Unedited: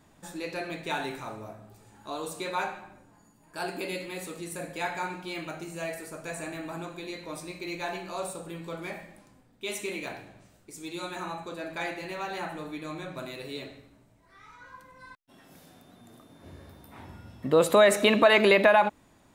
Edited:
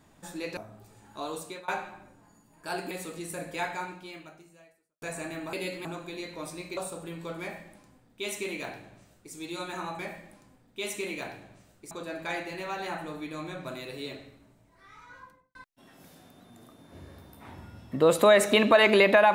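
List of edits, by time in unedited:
0.57–1.47 s: delete
2.11–2.58 s: fade out equal-power, to -24 dB
3.81–4.13 s: move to 6.75 s
4.84–6.24 s: fade out quadratic
7.67–8.20 s: delete
8.84–10.76 s: copy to 11.42 s
14.66–15.06 s: studio fade out

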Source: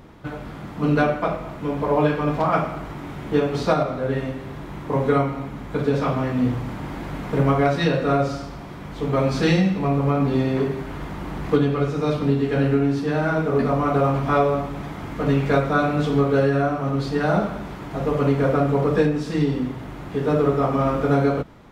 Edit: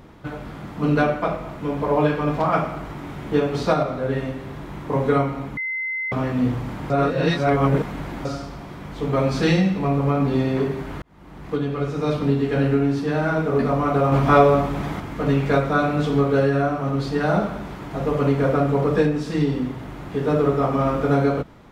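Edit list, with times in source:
5.57–6.12 s: bleep 2.06 kHz -23.5 dBFS
6.90–8.25 s: reverse
11.02–12.12 s: fade in
14.12–15.00 s: gain +5 dB

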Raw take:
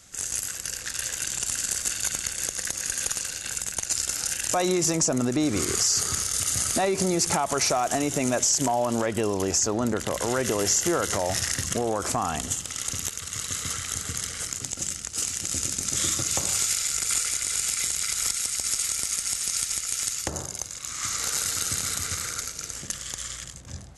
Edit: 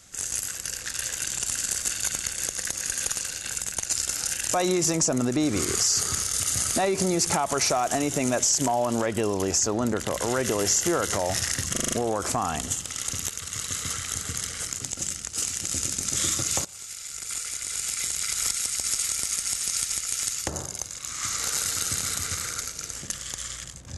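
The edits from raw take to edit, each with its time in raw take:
11.72 s: stutter 0.04 s, 6 plays
16.45–18.22 s: fade in, from -21 dB

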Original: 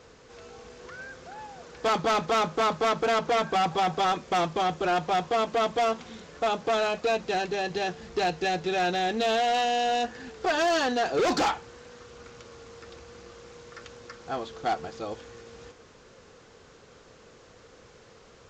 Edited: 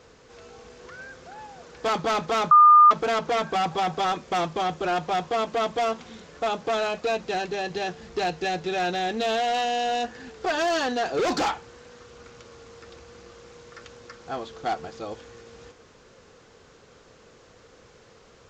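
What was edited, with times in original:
2.51–2.91 s: bleep 1.21 kHz -9.5 dBFS

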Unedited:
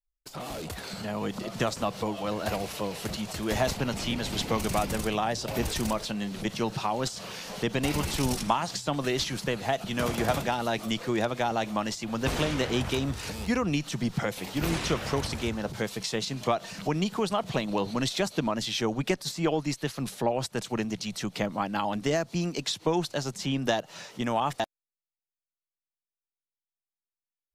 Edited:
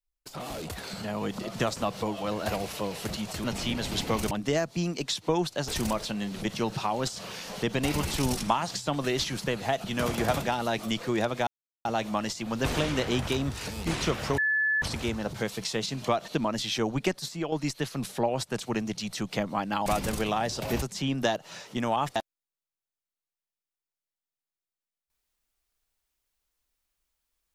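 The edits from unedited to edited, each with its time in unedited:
3.44–3.85 s: delete
4.72–5.68 s: swap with 21.89–23.26 s
11.47 s: insert silence 0.38 s
13.49–14.70 s: delete
15.21 s: add tone 1.73 kHz -22.5 dBFS 0.44 s
16.67–18.31 s: delete
19.10–19.55 s: fade out, to -8 dB

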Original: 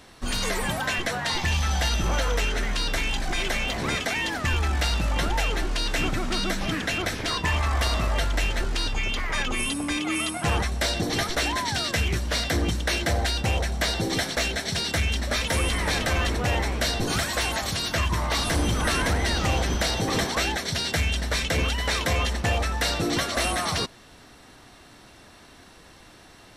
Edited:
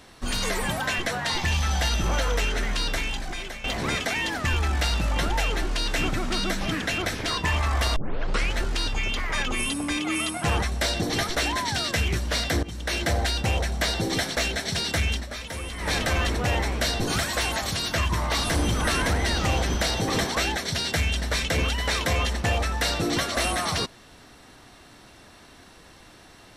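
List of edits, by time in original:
2.85–3.64 s: fade out linear, to -14 dB
7.96 s: tape start 0.57 s
12.63–13.02 s: fade in, from -17.5 dB
15.12–15.92 s: dip -9.5 dB, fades 0.15 s

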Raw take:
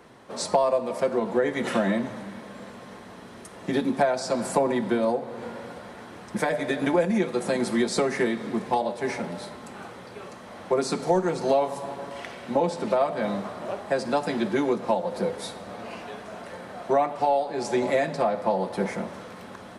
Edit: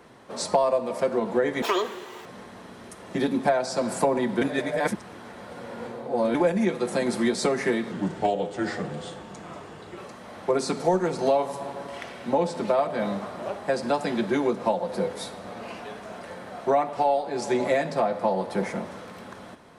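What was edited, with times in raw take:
1.62–2.79 s: speed 184%
4.95–6.88 s: reverse
8.45–10.20 s: speed 85%

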